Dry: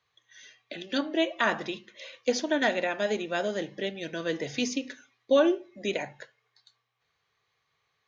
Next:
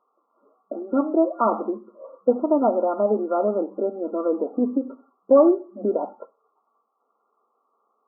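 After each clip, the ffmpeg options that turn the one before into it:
-filter_complex "[0:a]afftfilt=real='re*between(b*sr/4096,200,1400)':imag='im*between(b*sr/4096,200,1400)':win_size=4096:overlap=0.75,asplit=2[a][b];[b]acompressor=threshold=-34dB:ratio=6,volume=-2.5dB[c];[a][c]amix=inputs=2:normalize=0,volume=6dB"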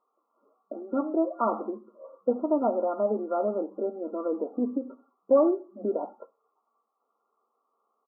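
-filter_complex "[0:a]asplit=2[a][b];[b]adelay=13,volume=-14dB[c];[a][c]amix=inputs=2:normalize=0,volume=-6dB"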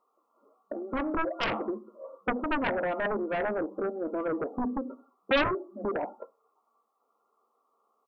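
-af "aeval=exprs='0.282*(cos(1*acos(clip(val(0)/0.282,-1,1)))-cos(1*PI/2))+0.0631*(cos(3*acos(clip(val(0)/0.282,-1,1)))-cos(3*PI/2))+0.112*(cos(7*acos(clip(val(0)/0.282,-1,1)))-cos(7*PI/2))':c=same,volume=-5dB"

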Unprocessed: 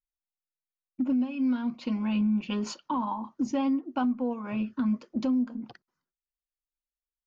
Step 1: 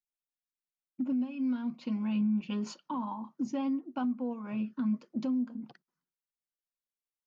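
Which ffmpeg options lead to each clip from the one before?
-af "lowshelf=f=120:t=q:w=3:g=-9,volume=-7dB"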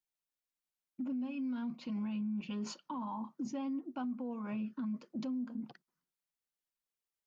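-af "alimiter=level_in=8.5dB:limit=-24dB:level=0:latency=1:release=23,volume=-8.5dB"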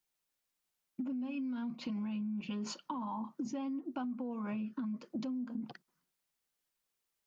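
-af "acompressor=threshold=-43dB:ratio=6,volume=7dB"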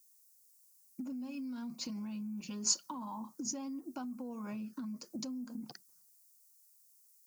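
-af "aexciter=amount=13.7:drive=3.9:freq=4.8k,volume=-3.5dB"

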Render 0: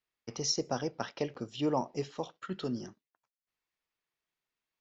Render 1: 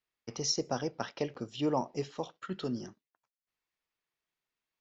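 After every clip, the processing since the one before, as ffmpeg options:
-af anull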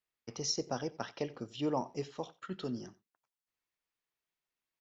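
-af "aecho=1:1:90:0.0891,volume=-3dB"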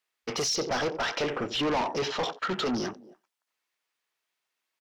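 -filter_complex "[0:a]asplit=2[a][b];[b]highpass=f=720:p=1,volume=33dB,asoftclip=type=tanh:threshold=-20.5dB[c];[a][c]amix=inputs=2:normalize=0,lowpass=f=6.7k:p=1,volume=-6dB,asplit=2[d][e];[e]adelay=270,highpass=300,lowpass=3.4k,asoftclip=type=hard:threshold=-30.5dB,volume=-15dB[f];[d][f]amix=inputs=2:normalize=0,afwtdn=0.01"

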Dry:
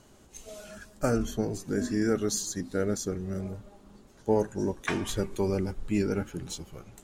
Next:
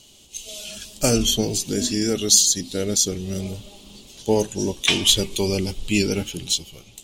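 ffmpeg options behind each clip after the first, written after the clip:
-af "highshelf=f=2.2k:t=q:w=3:g=12,dynaudnorm=f=150:g=11:m=11.5dB,volume=-1dB"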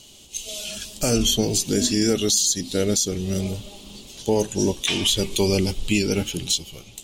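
-af "alimiter=limit=-12.5dB:level=0:latency=1:release=186,volume=3dB"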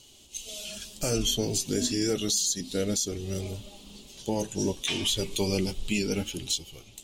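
-af "flanger=delay=2.2:depth=5.9:regen=-57:speed=0.3:shape=triangular,volume=-2.5dB"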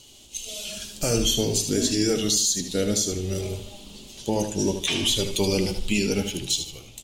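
-af "aecho=1:1:76|152|228|304:0.398|0.127|0.0408|0.013,volume=4dB"

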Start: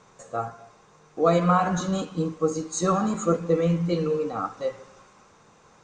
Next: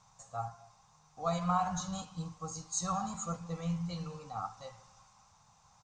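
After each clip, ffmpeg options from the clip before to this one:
-af "firequalizer=gain_entry='entry(110,0);entry(350,-29);entry(780,-1);entry(1600,-12);entry(5100,1);entry(9500,-3)':delay=0.05:min_phase=1,volume=-3.5dB"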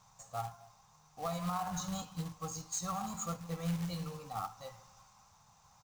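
-af "alimiter=level_in=3dB:limit=-24dB:level=0:latency=1:release=299,volume=-3dB,acrusher=bits=3:mode=log:mix=0:aa=0.000001"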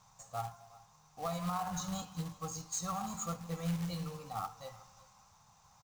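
-af "aecho=1:1:366:0.0841"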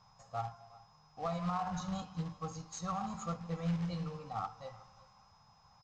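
-af "adynamicsmooth=sensitivity=2:basefreq=3k,lowpass=f=6.6k:t=q:w=1.5,aeval=exprs='val(0)+0.000282*sin(2*PI*5100*n/s)':c=same,volume=1dB"

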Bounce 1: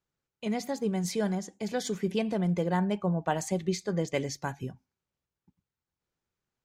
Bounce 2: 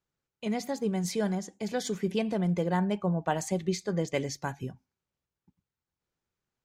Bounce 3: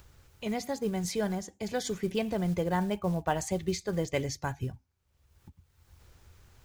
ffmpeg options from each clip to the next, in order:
-af anull
-af "acompressor=mode=upward:threshold=-42dB:ratio=2.5,acrusher=bits=7:mode=log:mix=0:aa=0.000001,lowshelf=f=120:t=q:w=1.5:g=11.5"

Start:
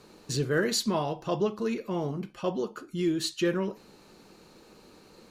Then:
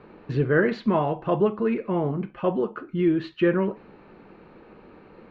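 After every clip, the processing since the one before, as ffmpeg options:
-af "lowpass=f=2.4k:w=0.5412,lowpass=f=2.4k:w=1.3066,volume=6dB"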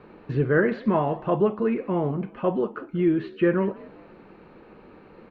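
-filter_complex "[0:a]acrossover=split=2900[a][b];[b]acompressor=threshold=-59dB:ratio=4:attack=1:release=60[c];[a][c]amix=inputs=2:normalize=0,asplit=4[d][e][f][g];[e]adelay=184,afreqshift=55,volume=-22dB[h];[f]adelay=368,afreqshift=110,volume=-29.7dB[i];[g]adelay=552,afreqshift=165,volume=-37.5dB[j];[d][h][i][j]amix=inputs=4:normalize=0"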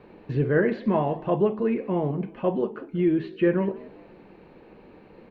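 -af "equalizer=f=1.3k:t=o:w=0.51:g=-8,bandreject=f=54.61:t=h:w=4,bandreject=f=109.22:t=h:w=4,bandreject=f=163.83:t=h:w=4,bandreject=f=218.44:t=h:w=4,bandreject=f=273.05:t=h:w=4,bandreject=f=327.66:t=h:w=4,bandreject=f=382.27:t=h:w=4,bandreject=f=436.88:t=h:w=4"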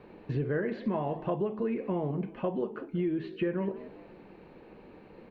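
-af "acompressor=threshold=-25dB:ratio=6,volume=-2dB"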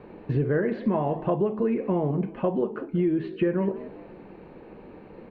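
-af "highshelf=f=2.9k:g=-10,volume=6.5dB"

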